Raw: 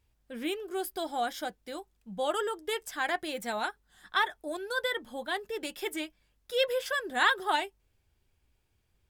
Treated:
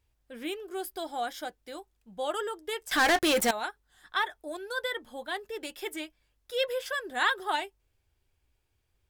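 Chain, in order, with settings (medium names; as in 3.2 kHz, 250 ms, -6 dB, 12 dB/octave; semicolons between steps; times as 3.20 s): peaking EQ 190 Hz -8.5 dB 0.53 oct; 2.91–3.51 s: waveshaping leveller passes 5; trim -1.5 dB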